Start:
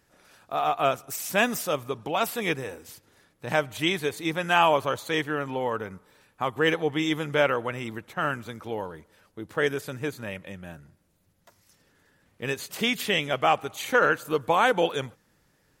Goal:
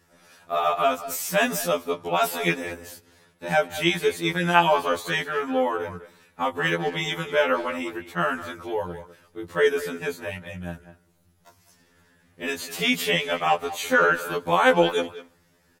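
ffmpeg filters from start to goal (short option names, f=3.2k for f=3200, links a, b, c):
-filter_complex "[0:a]asplit=2[a][b];[b]alimiter=limit=-14.5dB:level=0:latency=1,volume=2dB[c];[a][c]amix=inputs=2:normalize=0,asplit=2[d][e];[e]adelay=200,highpass=300,lowpass=3.4k,asoftclip=type=hard:threshold=-12.5dB,volume=-13dB[f];[d][f]amix=inputs=2:normalize=0,afftfilt=real='re*2*eq(mod(b,4),0)':imag='im*2*eq(mod(b,4),0)':win_size=2048:overlap=0.75,volume=-1.5dB"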